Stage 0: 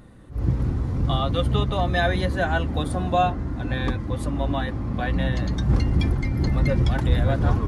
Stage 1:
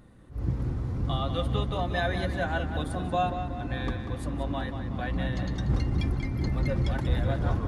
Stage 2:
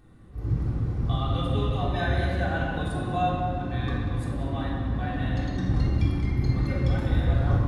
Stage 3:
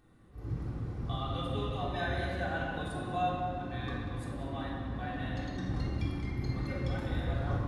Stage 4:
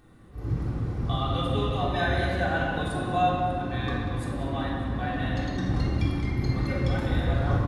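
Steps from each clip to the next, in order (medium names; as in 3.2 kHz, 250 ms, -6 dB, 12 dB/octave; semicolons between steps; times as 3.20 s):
tape echo 187 ms, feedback 53%, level -8 dB, low-pass 5.7 kHz; trim -6.5 dB
simulated room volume 1900 m³, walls mixed, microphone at 3.6 m; trim -5.5 dB
bass shelf 200 Hz -7 dB; trim -5 dB
delay 595 ms -21 dB; trim +8 dB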